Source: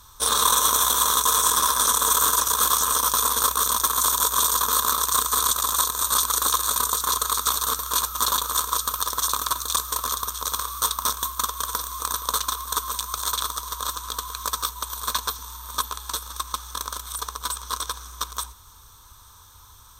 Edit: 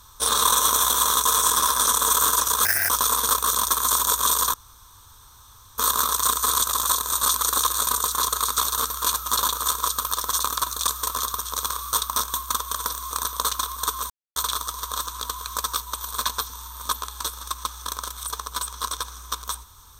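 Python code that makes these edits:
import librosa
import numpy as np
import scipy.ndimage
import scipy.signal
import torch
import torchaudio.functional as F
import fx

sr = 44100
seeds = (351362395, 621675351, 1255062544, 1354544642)

y = fx.edit(x, sr, fx.speed_span(start_s=2.65, length_s=0.38, speed=1.52),
    fx.insert_room_tone(at_s=4.67, length_s=1.24),
    fx.silence(start_s=12.99, length_s=0.26), tone=tone)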